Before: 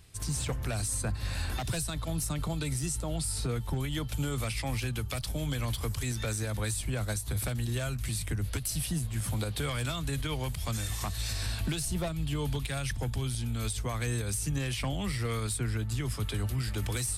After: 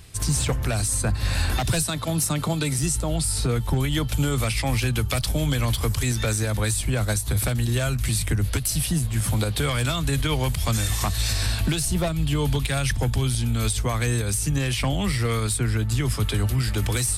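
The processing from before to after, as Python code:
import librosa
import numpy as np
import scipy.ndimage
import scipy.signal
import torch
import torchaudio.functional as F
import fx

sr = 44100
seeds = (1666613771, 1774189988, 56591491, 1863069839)

y = fx.highpass(x, sr, hz=130.0, slope=12, at=(1.82, 2.79))
y = fx.rider(y, sr, range_db=10, speed_s=0.5)
y = y * librosa.db_to_amplitude(9.0)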